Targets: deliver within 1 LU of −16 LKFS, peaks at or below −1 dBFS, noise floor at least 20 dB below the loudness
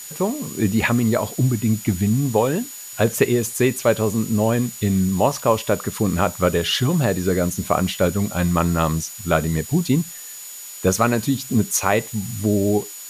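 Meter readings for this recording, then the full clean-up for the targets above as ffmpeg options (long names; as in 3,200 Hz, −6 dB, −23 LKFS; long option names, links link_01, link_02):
interfering tone 6,900 Hz; level of the tone −37 dBFS; background noise floor −36 dBFS; target noise floor −41 dBFS; integrated loudness −20.5 LKFS; sample peak −3.0 dBFS; target loudness −16.0 LKFS
→ -af "bandreject=frequency=6900:width=30"
-af "afftdn=noise_reduction=6:noise_floor=-36"
-af "volume=4.5dB,alimiter=limit=-1dB:level=0:latency=1"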